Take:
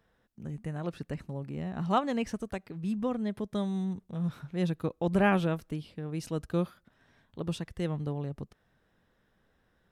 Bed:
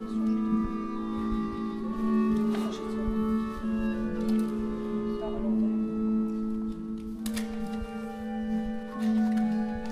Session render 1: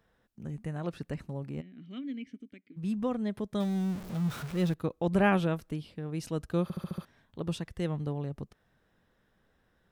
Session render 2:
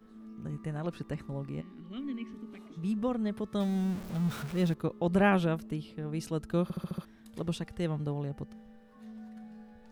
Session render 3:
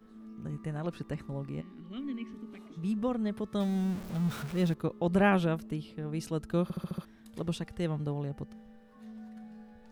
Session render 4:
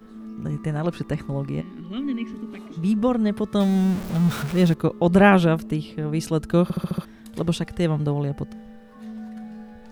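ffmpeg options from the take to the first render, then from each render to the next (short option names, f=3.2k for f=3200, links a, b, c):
-filter_complex "[0:a]asplit=3[a][b][c];[a]afade=t=out:st=1.6:d=0.02[d];[b]asplit=3[e][f][g];[e]bandpass=f=270:t=q:w=8,volume=0dB[h];[f]bandpass=f=2.29k:t=q:w=8,volume=-6dB[i];[g]bandpass=f=3.01k:t=q:w=8,volume=-9dB[j];[h][i][j]amix=inputs=3:normalize=0,afade=t=in:st=1.6:d=0.02,afade=t=out:st=2.76:d=0.02[k];[c]afade=t=in:st=2.76:d=0.02[l];[d][k][l]amix=inputs=3:normalize=0,asettb=1/sr,asplit=3[m][n][o];[m]atrim=end=3.604[p];[n]atrim=start=3.6:end=4.74,asetpts=PTS-STARTPTS,afade=t=in:d=0.004:c=qsin,afade=t=out:st=1.136:d=0.004:c=qsin,aeval=exprs='val(0)+0.5*0.0133*sgn(val(0))':c=same[q];[o]atrim=start=4.736[r];[p][q]acrossfade=d=0.004:c1=hsin:c2=qsin[s];[s][r]acrossfade=d=0.004:c1=qsin:c2=hsin,asplit=7[t][u][v][w][x][y][z];[t]atrim=end=6.702[aa];[u]atrim=start=6.628:end=6.702[ab];[v]atrim=start=6.628:end=6.702[ac];[w]atrim=start=6.628:end=6.702[ad];[x]atrim=start=6.628:end=6.702[ae];[y]atrim=start=6.628:end=6.702[af];[z]atrim=start=7.048[ag];[aa][ab]acrossfade=d=0.004:c1=hsin:c2=hsin[ah];[ah][ac]acrossfade=d=0.004:c1=hsin:c2=hsin[ai];[ai][ad]acrossfade=d=0.004:c1=hsin:c2=hsin[aj];[aj][ae]acrossfade=d=0.004:c1=hsin:c2=hsin[ak];[ak][af]acrossfade=d=0.004:c1=hsin:c2=hsin[al];[al][ag]acrossfade=d=0.004:c1=hsin:c2=hsin"
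-filter_complex "[1:a]volume=-21dB[a];[0:a][a]amix=inputs=2:normalize=0"
-af anull
-af "volume=10.5dB"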